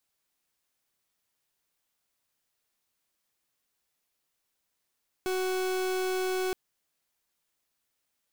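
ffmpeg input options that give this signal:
-f lavfi -i "aevalsrc='0.0335*(2*lt(mod(372*t,1),0.39)-1)':d=1.27:s=44100"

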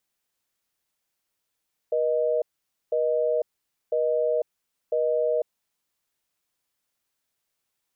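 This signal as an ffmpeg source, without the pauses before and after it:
-f lavfi -i "aevalsrc='0.0668*(sin(2*PI*480*t)+sin(2*PI*620*t))*clip(min(mod(t,1),0.5-mod(t,1))/0.005,0,1)':d=3.51:s=44100"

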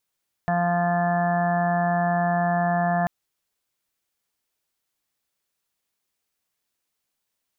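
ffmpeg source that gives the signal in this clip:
-f lavfi -i "aevalsrc='0.0631*sin(2*PI*174*t)+0.00668*sin(2*PI*348*t)+0.00794*sin(2*PI*522*t)+0.0794*sin(2*PI*696*t)+0.0224*sin(2*PI*870*t)+0.0168*sin(2*PI*1044*t)+0.0133*sin(2*PI*1218*t)+0.01*sin(2*PI*1392*t)+0.00794*sin(2*PI*1566*t)+0.0282*sin(2*PI*1740*t)':d=2.59:s=44100"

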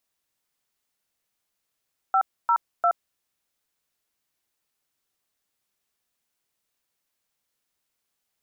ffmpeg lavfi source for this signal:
-f lavfi -i "aevalsrc='0.106*clip(min(mod(t,0.349),0.073-mod(t,0.349))/0.002,0,1)*(eq(floor(t/0.349),0)*(sin(2*PI*770*mod(t,0.349))+sin(2*PI*1336*mod(t,0.349)))+eq(floor(t/0.349),1)*(sin(2*PI*941*mod(t,0.349))+sin(2*PI*1336*mod(t,0.349)))+eq(floor(t/0.349),2)*(sin(2*PI*697*mod(t,0.349))+sin(2*PI*1336*mod(t,0.349))))':d=1.047:s=44100"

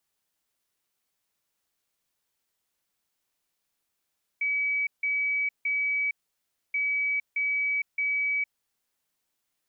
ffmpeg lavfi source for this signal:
-f lavfi -i "aevalsrc='0.0631*sin(2*PI*2280*t)*clip(min(mod(mod(t,2.33),0.62),0.46-mod(mod(t,2.33),0.62))/0.005,0,1)*lt(mod(t,2.33),1.86)':d=4.66:s=44100"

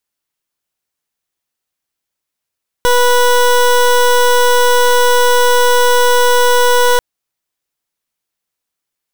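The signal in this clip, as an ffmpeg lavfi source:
-f lavfi -i "aevalsrc='0.335*(2*lt(mod(490*t,1),0.21)-1)':d=4.14:s=44100"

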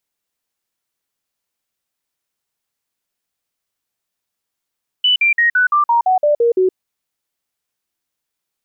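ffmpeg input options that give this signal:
-f lavfi -i "aevalsrc='0.316*clip(min(mod(t,0.17),0.12-mod(t,0.17))/0.005,0,1)*sin(2*PI*2980*pow(2,-floor(t/0.17)/3)*mod(t,0.17))':d=1.7:s=44100"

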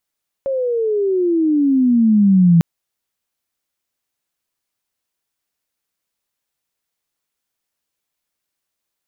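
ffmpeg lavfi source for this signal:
-f lavfi -i "aevalsrc='pow(10,(-7+10*(t/2.15-1))/20)*sin(2*PI*551*2.15/(-21*log(2)/12)*(exp(-21*log(2)/12*t/2.15)-1))':d=2.15:s=44100"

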